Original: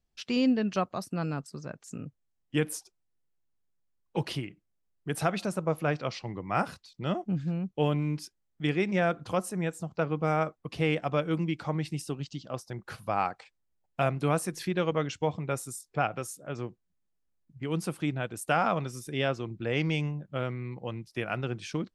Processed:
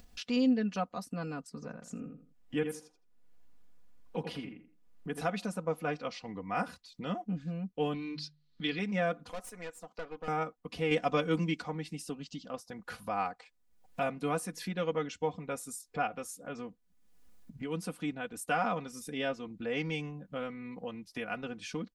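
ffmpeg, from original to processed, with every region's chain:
ffmpeg -i in.wav -filter_complex "[0:a]asettb=1/sr,asplit=3[link_01][link_02][link_03];[link_01]atrim=end=1.494[link_04];[link_02]atrim=start=1.49:end=5.21,asetpts=PTS-STARTPTS,afade=type=in:duration=0.004:curve=qsin,afade=type=out:start_time=3.716:duration=0.004:curve=qsin,highshelf=frequency=3700:gain=-8,asplit=2[link_05][link_06];[link_06]adelay=82,lowpass=frequency=2400:poles=1,volume=-6.5dB,asplit=2[link_07][link_08];[link_08]adelay=82,lowpass=frequency=2400:poles=1,volume=0.21,asplit=2[link_09][link_10];[link_10]adelay=82,lowpass=frequency=2400:poles=1,volume=0.21[link_11];[link_05][link_07][link_09][link_11]amix=inputs=4:normalize=0,atrim=end_sample=164052[link_12];[link_03]atrim=start=5.206[link_13];[link_04][link_12]acrossfade=duration=0.004:curve1=hsin:curve2=qsin[link_14];[link_14][link_13]acrossfade=duration=0.004:curve1=qsin:curve2=hsin,asettb=1/sr,asplit=3[link_15][link_16][link_17];[link_15]atrim=end=7.944[link_18];[link_16]atrim=start=7.94:end=8.79,asetpts=PTS-STARTPTS,afade=type=in:duration=0.004:curve=qsin,afade=type=out:start_time=0.846:duration=0.004:curve=qsin,lowpass=frequency=4200:width_type=q:width=7.1,equalizer=frequency=660:width_type=o:width=0.83:gain=-8,bandreject=frequency=50:width_type=h:width=6,bandreject=frequency=100:width_type=h:width=6,bandreject=frequency=150:width_type=h:width=6[link_19];[link_17]atrim=start=8.786[link_20];[link_18][link_19]acrossfade=duration=0.004:curve1=hsin:curve2=qsin[link_21];[link_21][link_20]acrossfade=duration=0.004:curve1=qsin:curve2=hsin,asettb=1/sr,asplit=3[link_22][link_23][link_24];[link_22]atrim=end=9.294[link_25];[link_23]atrim=start=9.29:end=10.28,asetpts=PTS-STARTPTS,afade=type=in:duration=0.004:curve=qsin,afade=type=out:start_time=0.986:duration=0.004:curve=qsin,highpass=490,aeval=exprs='(tanh(39.8*val(0)+0.8)-tanh(0.8))/39.8':channel_layout=same[link_26];[link_24]atrim=start=10.276[link_27];[link_25][link_26]acrossfade=duration=0.004:curve1=hsin:curve2=qsin[link_28];[link_28][link_27]acrossfade=duration=0.004:curve1=qsin:curve2=hsin,asettb=1/sr,asplit=3[link_29][link_30][link_31];[link_29]atrim=end=10.914[link_32];[link_30]atrim=start=10.91:end=11.62,asetpts=PTS-STARTPTS,afade=type=in:duration=0.004:curve=qsin,afade=type=out:start_time=0.706:duration=0.004:curve=qsin,equalizer=frequency=6200:width=1:gain=7,acontrast=29[link_33];[link_31]atrim=start=11.616[link_34];[link_32][link_33]acrossfade=duration=0.004:curve1=hsin:curve2=qsin[link_35];[link_35][link_34]acrossfade=duration=0.004:curve1=qsin:curve2=hsin,aecho=1:1:4.1:0.81,acompressor=mode=upward:threshold=-29dB:ratio=2.5,volume=-7dB" out.wav

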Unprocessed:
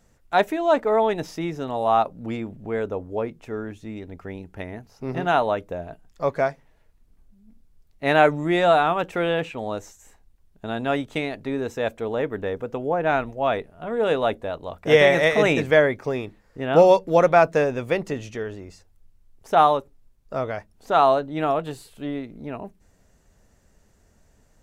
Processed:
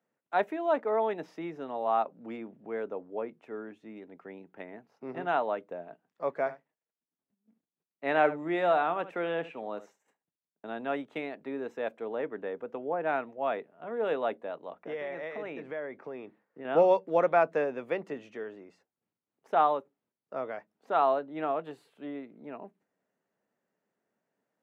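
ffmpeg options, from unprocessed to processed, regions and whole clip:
ffmpeg -i in.wav -filter_complex "[0:a]asettb=1/sr,asplit=3[link_01][link_02][link_03];[link_01]atrim=end=6.344[link_04];[link_02]atrim=start=6.34:end=10.66,asetpts=PTS-STARTPTS,afade=type=in:duration=0.004:curve=qsin,afade=type=out:start_time=4.316:duration=0.004:curve=qsin,agate=range=-33dB:threshold=-49dB:ratio=3:release=100:detection=peak,aecho=1:1:72:0.168,atrim=end_sample=190512[link_05];[link_03]atrim=start=10.656[link_06];[link_04][link_05]acrossfade=duration=0.004:curve1=hsin:curve2=qsin[link_07];[link_07][link_06]acrossfade=duration=0.004:curve1=qsin:curve2=hsin,asettb=1/sr,asplit=3[link_08][link_09][link_10];[link_08]atrim=end=14.744[link_11];[link_09]atrim=start=14.74:end=16.65,asetpts=PTS-STARTPTS,afade=type=in:duration=0.004:curve=qsin,afade=type=out:start_time=1.906:duration=0.004:curve=qsin,aemphasis=mode=reproduction:type=50fm,acompressor=threshold=-29dB:ratio=3:attack=3.2:release=140:knee=1:detection=peak[link_12];[link_10]atrim=start=16.646[link_13];[link_11][link_12]acrossfade=duration=0.004:curve1=hsin:curve2=qsin[link_14];[link_14][link_13]acrossfade=duration=0.004:curve1=qsin:curve2=hsin,agate=range=-8dB:threshold=-52dB:ratio=16:detection=peak,highpass=frequency=140:width=0.5412,highpass=frequency=140:width=1.3066,acrossover=split=210 3000:gain=0.224 1 0.158[link_15][link_16][link_17];[link_15][link_16][link_17]amix=inputs=3:normalize=0,volume=-8dB" out.wav

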